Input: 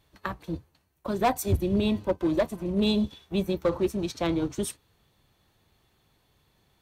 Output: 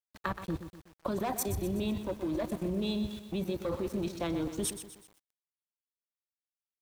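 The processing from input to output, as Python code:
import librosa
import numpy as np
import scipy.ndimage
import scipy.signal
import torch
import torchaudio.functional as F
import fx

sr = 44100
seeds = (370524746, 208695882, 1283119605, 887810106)

y = fx.level_steps(x, sr, step_db=18)
y = np.where(np.abs(y) >= 10.0 ** (-56.0 / 20.0), y, 0.0)
y = fx.echo_crushed(y, sr, ms=124, feedback_pct=55, bits=9, wet_db=-10.0)
y = F.gain(torch.from_numpy(y), 4.0).numpy()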